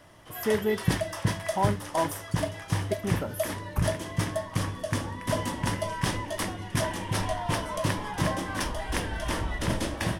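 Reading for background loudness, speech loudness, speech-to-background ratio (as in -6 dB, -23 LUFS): -30.5 LUFS, -32.0 LUFS, -1.5 dB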